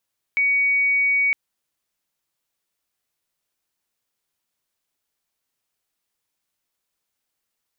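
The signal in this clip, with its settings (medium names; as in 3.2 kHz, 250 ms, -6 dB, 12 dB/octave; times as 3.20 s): tone sine 2.25 kHz -16 dBFS 0.96 s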